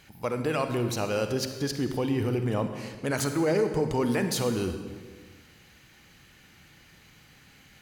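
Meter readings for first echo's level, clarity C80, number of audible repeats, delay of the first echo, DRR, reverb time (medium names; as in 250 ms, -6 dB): no echo, 9.0 dB, no echo, no echo, 7.0 dB, 1.6 s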